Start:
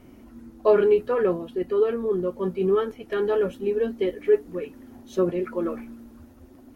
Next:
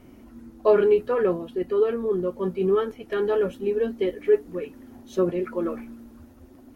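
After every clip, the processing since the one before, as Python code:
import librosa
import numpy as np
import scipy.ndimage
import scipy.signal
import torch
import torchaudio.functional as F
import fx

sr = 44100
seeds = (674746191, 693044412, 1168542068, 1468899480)

y = x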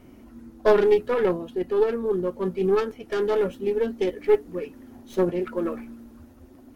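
y = fx.tracing_dist(x, sr, depth_ms=0.23)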